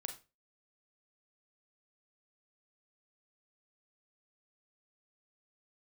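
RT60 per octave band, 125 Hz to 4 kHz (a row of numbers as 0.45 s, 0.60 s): 0.35 s, 0.30 s, 0.30 s, 0.25 s, 0.30 s, 0.25 s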